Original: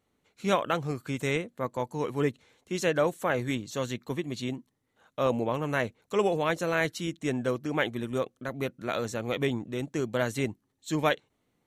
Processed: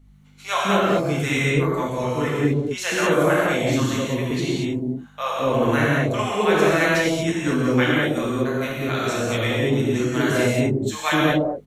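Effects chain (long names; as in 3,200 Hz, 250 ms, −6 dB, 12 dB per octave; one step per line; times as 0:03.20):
multiband delay without the direct sound highs, lows 210 ms, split 690 Hz
mains hum 50 Hz, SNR 25 dB
reverb whose tail is shaped and stops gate 260 ms flat, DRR −6 dB
level +3.5 dB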